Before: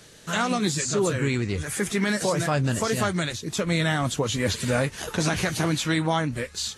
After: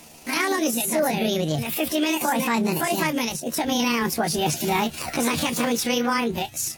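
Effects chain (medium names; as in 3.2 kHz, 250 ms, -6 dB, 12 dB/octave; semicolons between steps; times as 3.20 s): rotating-head pitch shifter +7.5 st; in parallel at 0 dB: peak limiter -21 dBFS, peak gain reduction 8 dB; on the sum: trim -1.5 dB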